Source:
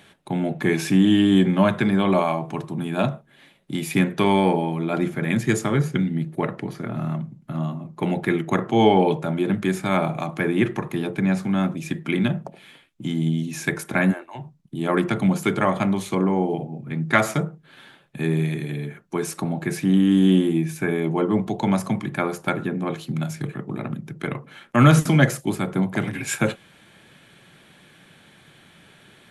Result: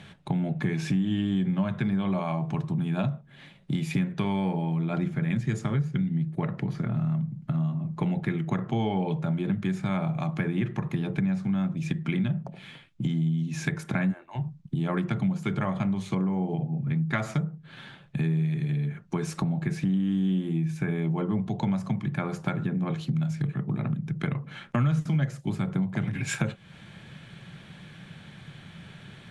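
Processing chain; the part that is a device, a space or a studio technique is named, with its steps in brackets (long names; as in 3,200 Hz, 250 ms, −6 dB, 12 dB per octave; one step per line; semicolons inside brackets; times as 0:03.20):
jukebox (low-pass filter 6,600 Hz 12 dB per octave; low shelf with overshoot 220 Hz +8 dB, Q 1.5; downward compressor 4 to 1, threshold −28 dBFS, peak gain reduction 21.5 dB)
level +1.5 dB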